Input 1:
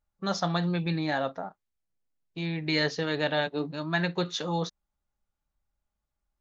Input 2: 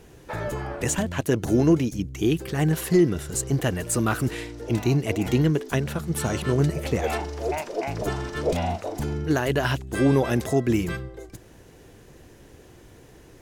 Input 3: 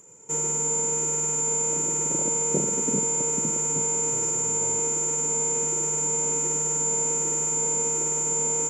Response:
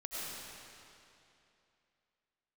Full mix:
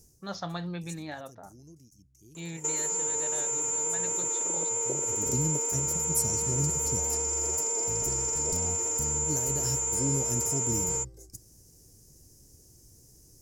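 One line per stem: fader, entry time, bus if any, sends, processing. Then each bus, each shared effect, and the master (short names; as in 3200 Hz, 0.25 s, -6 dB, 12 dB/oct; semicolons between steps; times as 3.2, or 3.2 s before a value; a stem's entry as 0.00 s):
-6.5 dB, 0.00 s, bus A, no send, random-step tremolo
-6.5 dB, 0.00 s, no bus, no send, EQ curve 120 Hz 0 dB, 1600 Hz -20 dB, 3600 Hz -16 dB, 5200 Hz +11 dB; auto duck -22 dB, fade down 0.40 s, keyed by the first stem
+2.0 dB, 2.35 s, bus A, no send, HPF 340 Hz 24 dB/oct
bus A: 0.0 dB, vibrato 7.8 Hz 21 cents; compressor, threshold -27 dBFS, peak gain reduction 8.5 dB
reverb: off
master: dry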